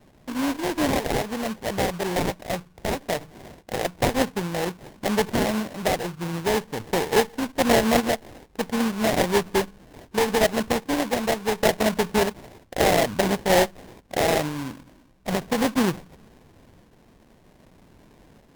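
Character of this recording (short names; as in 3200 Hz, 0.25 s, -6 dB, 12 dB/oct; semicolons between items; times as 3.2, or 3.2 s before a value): random-step tremolo 2.5 Hz, depth 55%; aliases and images of a low sample rate 1300 Hz, jitter 20%; Vorbis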